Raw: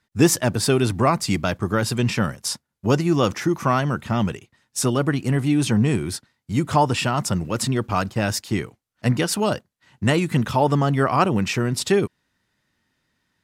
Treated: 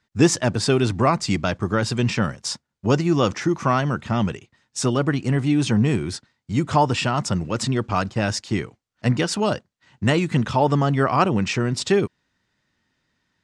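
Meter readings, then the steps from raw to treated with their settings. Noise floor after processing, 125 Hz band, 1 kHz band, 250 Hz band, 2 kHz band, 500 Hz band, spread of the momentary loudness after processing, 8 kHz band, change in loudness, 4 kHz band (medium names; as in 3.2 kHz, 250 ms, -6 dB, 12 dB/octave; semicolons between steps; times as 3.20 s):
-78 dBFS, 0.0 dB, 0.0 dB, 0.0 dB, 0.0 dB, 0.0 dB, 8 LU, -2.5 dB, 0.0 dB, 0.0 dB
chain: low-pass 7.8 kHz 24 dB/octave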